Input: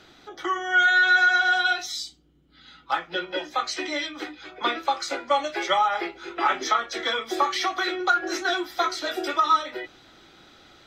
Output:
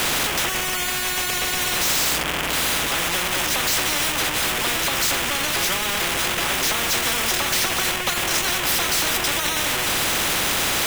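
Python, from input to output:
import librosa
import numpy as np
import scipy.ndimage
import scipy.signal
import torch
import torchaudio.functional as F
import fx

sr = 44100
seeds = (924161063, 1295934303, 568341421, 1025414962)

y = x + 0.5 * 10.0 ** (-25.5 / 20.0) * np.sign(x)
y = fx.high_shelf_res(y, sr, hz=3300.0, db=-7.0, q=3.0)
y = fx.spectral_comp(y, sr, ratio=10.0)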